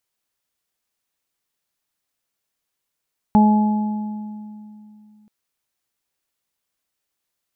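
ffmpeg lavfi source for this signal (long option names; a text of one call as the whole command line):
ffmpeg -f lavfi -i "aevalsrc='0.335*pow(10,-3*t/2.84)*sin(2*PI*212*t)+0.0447*pow(10,-3*t/1.51)*sin(2*PI*424*t)+0.0422*pow(10,-3*t/1.79)*sin(2*PI*636*t)+0.188*pow(10,-3*t/1.9)*sin(2*PI*848*t)':duration=1.93:sample_rate=44100" out.wav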